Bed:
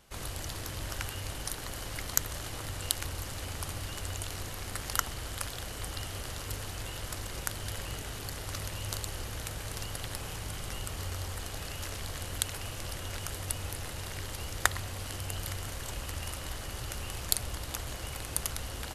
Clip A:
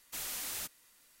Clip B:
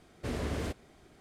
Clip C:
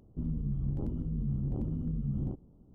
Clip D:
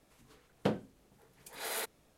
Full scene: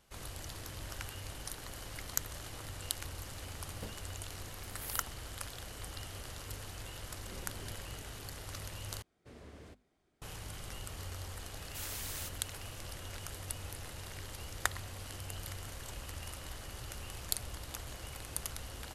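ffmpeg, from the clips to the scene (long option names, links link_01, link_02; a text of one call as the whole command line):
ffmpeg -i bed.wav -i cue0.wav -i cue1.wav -i cue2.wav -i cue3.wav -filter_complex "[2:a]asplit=2[link_01][link_02];[0:a]volume=-6.5dB[link_03];[4:a]aexciter=amount=7.6:drive=3.6:freq=8600[link_04];[link_01]afreqshift=-60[link_05];[link_02]bandreject=frequency=50:width_type=h:width=6,bandreject=frequency=100:width_type=h:width=6,bandreject=frequency=150:width_type=h:width=6,bandreject=frequency=200:width_type=h:width=6,bandreject=frequency=250:width_type=h:width=6[link_06];[1:a]asoftclip=type=hard:threshold=-30dB[link_07];[link_03]asplit=2[link_08][link_09];[link_08]atrim=end=9.024[link_10];[link_06]atrim=end=1.2,asetpts=PTS-STARTPTS,volume=-18dB[link_11];[link_09]atrim=start=10.216[link_12];[link_04]atrim=end=2.17,asetpts=PTS-STARTPTS,volume=-17dB,afade=type=in:duration=0.004:curve=hsin,afade=type=out:start_time=2.166:duration=0.004:curve=hsin,adelay=139797S[link_13];[link_05]atrim=end=1.2,asetpts=PTS-STARTPTS,volume=-15.5dB,afade=type=in:duration=0.004:curve=hsin,afade=type=out:start_time=1.196:duration=0.004:curve=hsin,adelay=7030[link_14];[link_07]atrim=end=1.2,asetpts=PTS-STARTPTS,volume=-4dB,afade=type=in:duration=0.004:curve=hsin,afade=type=out:start_time=1.196:duration=0.004:curve=hsin,adelay=512442S[link_15];[link_10][link_11]acrossfade=duration=0.004:curve1=hsin:curve2=hsin[link_16];[link_16][link_12]acrossfade=duration=0.004:curve1=hsin:curve2=hsin[link_17];[link_17][link_13][link_14][link_15]amix=inputs=4:normalize=0" out.wav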